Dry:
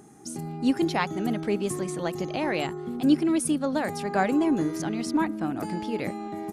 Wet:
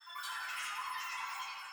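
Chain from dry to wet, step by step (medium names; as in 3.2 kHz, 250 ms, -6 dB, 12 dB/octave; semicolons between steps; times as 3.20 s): fade out at the end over 1.93 s; Doppler pass-by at 1.98 s, 42 m/s, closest 17 m; high-pass 330 Hz 24 dB/octave; reverse; compression 6:1, threshold -51 dBFS, peak gain reduction 23 dB; reverse; whistle 1.4 kHz -66 dBFS; granulator 139 ms, grains 9.6 per s, spray 16 ms, pitch spread up and down by 0 st; Schroeder reverb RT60 1 s, combs from 26 ms, DRR -6.5 dB; saturation -39.5 dBFS, distortion -23 dB; on a send: filtered feedback delay 325 ms, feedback 80%, low-pass 1.2 kHz, level -4 dB; on the sum: wide varispeed 3.78×; trim +6.5 dB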